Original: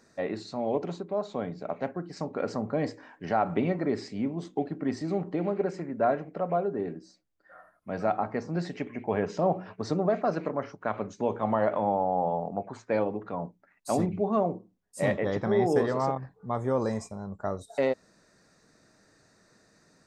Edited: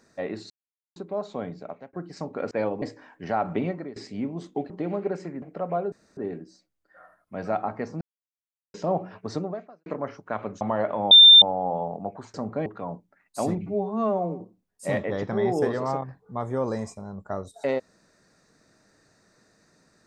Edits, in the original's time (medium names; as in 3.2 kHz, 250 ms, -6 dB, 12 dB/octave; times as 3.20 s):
0.50–0.96 s: mute
1.55–1.93 s: fade out
2.51–2.83 s: swap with 12.86–13.17 s
3.65–3.97 s: fade out, to -20 dB
4.71–5.24 s: delete
5.96–6.22 s: delete
6.72 s: insert room tone 0.25 s
8.56–9.29 s: mute
9.90–10.41 s: fade out quadratic
11.16–11.44 s: delete
11.94 s: add tone 3.59 kHz -7 dBFS 0.31 s
14.17–14.54 s: stretch 2×